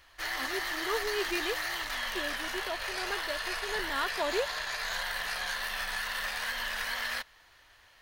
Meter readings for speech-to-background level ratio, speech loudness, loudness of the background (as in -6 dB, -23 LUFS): -3.5 dB, -37.0 LUFS, -33.5 LUFS